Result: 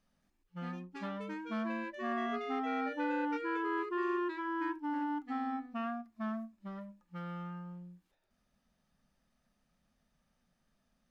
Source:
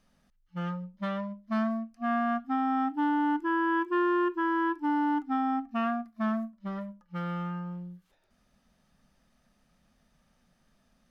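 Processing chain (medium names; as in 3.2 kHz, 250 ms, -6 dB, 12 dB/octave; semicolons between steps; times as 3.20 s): ever faster or slower copies 223 ms, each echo +6 st, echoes 2, each echo -6 dB; trim -8.5 dB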